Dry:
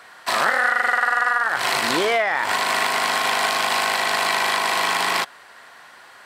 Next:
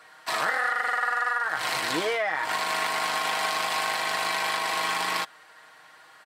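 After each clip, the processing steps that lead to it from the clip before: comb 6.4 ms; gain -8 dB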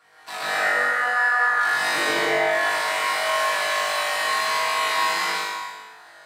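flutter echo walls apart 3.5 m, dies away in 0.95 s; reverb RT60 1.3 s, pre-delay 0.116 s, DRR -6.5 dB; gain -8.5 dB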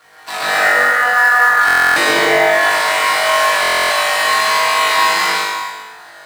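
in parallel at -6.5 dB: companded quantiser 4-bit; on the sum: stuck buffer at 1.66/3.61, samples 1024, times 12; gain +5.5 dB

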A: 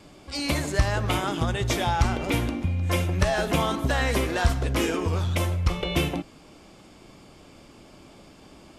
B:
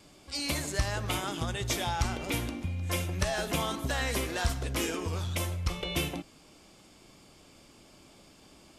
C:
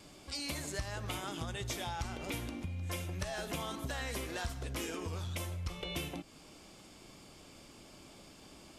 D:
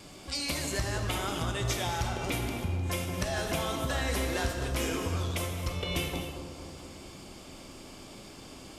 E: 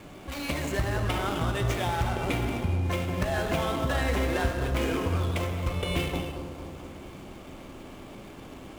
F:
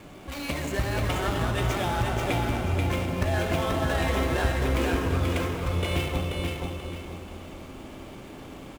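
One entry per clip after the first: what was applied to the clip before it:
high shelf 3300 Hz +9 dB; gain -8 dB
compressor 2.5:1, threshold -41 dBFS, peak gain reduction 12.5 dB; gain +1 dB
analogue delay 0.23 s, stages 2048, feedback 67%, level -9 dB; non-linear reverb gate 0.3 s flat, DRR 5 dB; gain +6 dB
median filter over 9 samples; gain +4.5 dB
feedback echo 0.484 s, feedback 33%, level -3.5 dB

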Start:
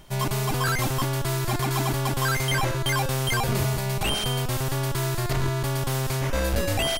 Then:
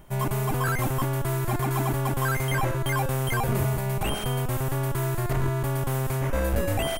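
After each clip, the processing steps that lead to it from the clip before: bell 4600 Hz -13 dB 1.4 oct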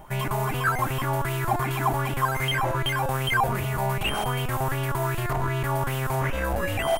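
limiter -23 dBFS, peak gain reduction 7 dB; LFO bell 2.6 Hz 750–3000 Hz +14 dB; gain +1.5 dB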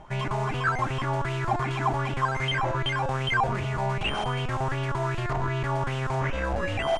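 LPF 6700 Hz 24 dB/oct; gain -1.5 dB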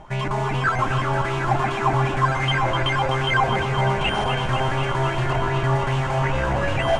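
echo with dull and thin repeats by turns 0.126 s, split 1200 Hz, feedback 90%, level -7 dB; gain +4 dB

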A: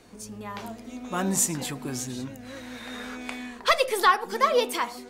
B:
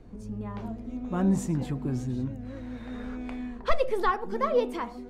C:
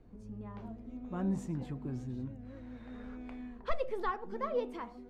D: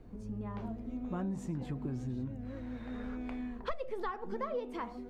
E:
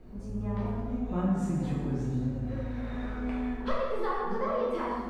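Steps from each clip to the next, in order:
tilt -4.5 dB/oct; gain -6 dB
high shelf 5800 Hz -9.5 dB; gain -9 dB
compressor 6:1, threshold -39 dBFS, peak gain reduction 14 dB; gain +5.5 dB
plate-style reverb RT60 1.6 s, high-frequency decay 0.65×, DRR -6.5 dB

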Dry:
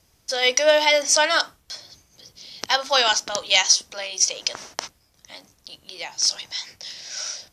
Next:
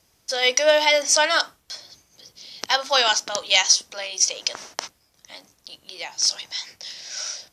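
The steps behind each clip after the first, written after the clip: low shelf 130 Hz -8.5 dB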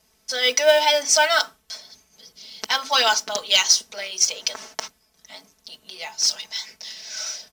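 comb 4.6 ms, depth 81%; modulation noise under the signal 25 dB; gain -2 dB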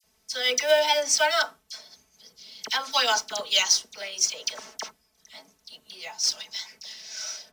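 dispersion lows, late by 40 ms, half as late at 2000 Hz; gain -4.5 dB

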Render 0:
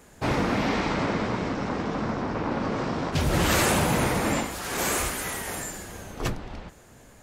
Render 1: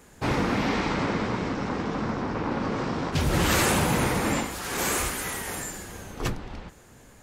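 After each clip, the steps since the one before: bell 640 Hz -4 dB 0.31 oct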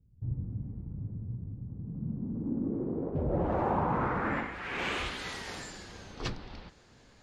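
low-pass sweep 110 Hz -> 4600 Hz, 1.67–5.35; gain -7.5 dB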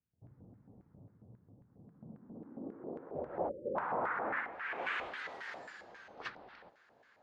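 LFO band-pass square 3.7 Hz 670–1600 Hz; spectral delete 3.49–3.76, 600–7600 Hz; gain +2.5 dB

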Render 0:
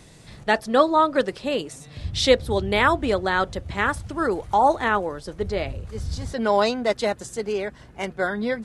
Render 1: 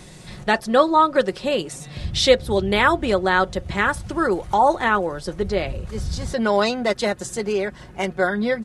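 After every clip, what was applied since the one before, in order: comb 5.5 ms, depth 38%; in parallel at -1 dB: compressor, threshold -29 dBFS, peak gain reduction 18 dB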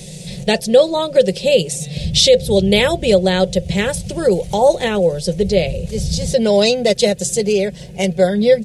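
EQ curve 110 Hz 0 dB, 170 Hz +11 dB, 290 Hz -9 dB, 500 Hz +9 dB, 1200 Hz -19 dB, 2500 Hz +3 dB, 3500 Hz +5 dB, 6700 Hz +8 dB; maximiser +5 dB; gain -1 dB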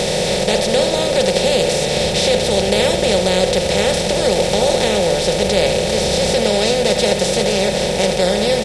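per-bin compression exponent 0.2; on a send: echo 77 ms -9.5 dB; on the sum: gain -10.5 dB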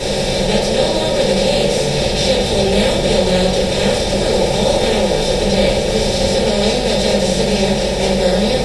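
reverb RT60 0.45 s, pre-delay 3 ms, DRR -9 dB; gain -12.5 dB

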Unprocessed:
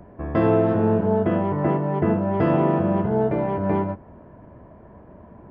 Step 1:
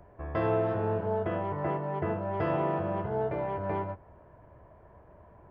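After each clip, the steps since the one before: bell 230 Hz -13 dB 1.1 oct; gain -5.5 dB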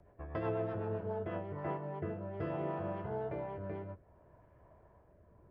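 rotary speaker horn 8 Hz, later 0.65 Hz, at 0.83; gain -6 dB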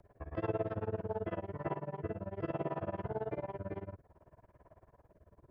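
tremolo 18 Hz, depth 97%; gain +4 dB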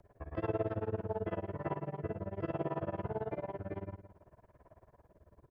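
feedback echo 0.164 s, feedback 22%, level -12 dB

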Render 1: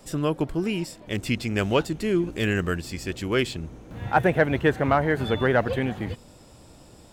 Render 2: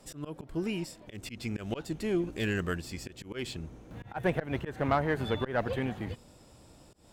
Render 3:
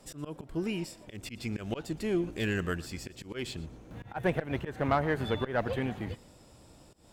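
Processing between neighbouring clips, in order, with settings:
auto swell 0.162 s; added harmonics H 4 -22 dB, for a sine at -8.5 dBFS; gain -6 dB
thinning echo 0.118 s, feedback 28%, level -20 dB

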